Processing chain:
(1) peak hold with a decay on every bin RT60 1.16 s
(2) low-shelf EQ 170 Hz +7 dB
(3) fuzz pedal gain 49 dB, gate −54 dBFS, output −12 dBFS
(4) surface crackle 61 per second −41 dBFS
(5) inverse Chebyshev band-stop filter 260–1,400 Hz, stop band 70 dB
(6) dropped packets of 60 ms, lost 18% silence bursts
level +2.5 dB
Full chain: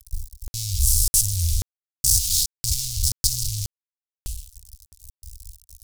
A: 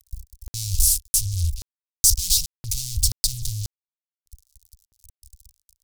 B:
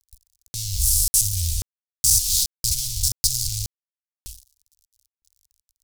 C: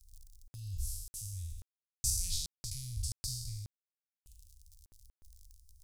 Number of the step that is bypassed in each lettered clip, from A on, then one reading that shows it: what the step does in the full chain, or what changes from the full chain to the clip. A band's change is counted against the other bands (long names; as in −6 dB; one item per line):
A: 1, change in momentary loudness spread −5 LU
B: 2, change in momentary loudness spread −6 LU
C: 3, change in crest factor +4.0 dB